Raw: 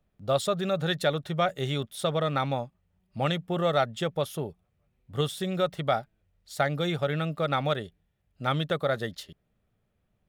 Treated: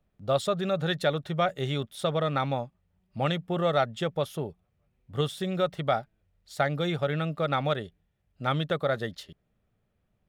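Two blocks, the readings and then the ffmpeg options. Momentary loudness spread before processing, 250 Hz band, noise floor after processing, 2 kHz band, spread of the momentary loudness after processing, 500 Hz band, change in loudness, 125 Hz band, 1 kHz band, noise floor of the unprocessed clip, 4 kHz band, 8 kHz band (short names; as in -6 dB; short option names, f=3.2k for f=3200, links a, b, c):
10 LU, 0.0 dB, -74 dBFS, -0.5 dB, 9 LU, 0.0 dB, 0.0 dB, 0.0 dB, 0.0 dB, -74 dBFS, -1.5 dB, -4.0 dB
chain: -af "highshelf=f=6.4k:g=-6.5"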